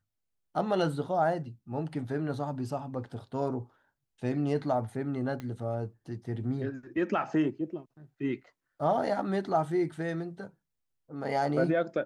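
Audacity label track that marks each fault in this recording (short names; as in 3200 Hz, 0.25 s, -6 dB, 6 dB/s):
5.400000	5.400000	pop -25 dBFS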